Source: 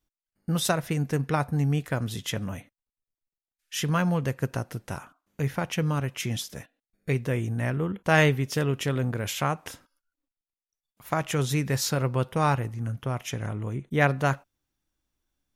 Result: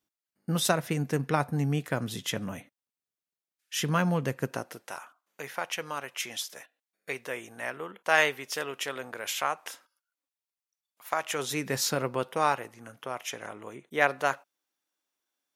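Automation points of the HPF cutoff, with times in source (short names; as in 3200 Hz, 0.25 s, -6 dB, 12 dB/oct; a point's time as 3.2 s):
4.39 s 160 Hz
4.93 s 630 Hz
11.21 s 630 Hz
11.83 s 200 Hz
12.6 s 470 Hz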